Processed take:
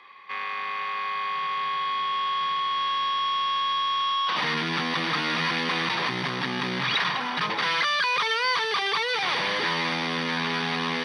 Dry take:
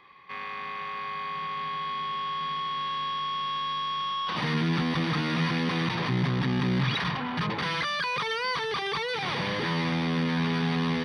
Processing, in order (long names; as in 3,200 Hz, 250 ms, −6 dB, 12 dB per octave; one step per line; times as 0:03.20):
meter weighting curve A
on a send: delay with a high-pass on its return 206 ms, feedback 81%, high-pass 5,600 Hz, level −6 dB
on the sum: level +4.5 dB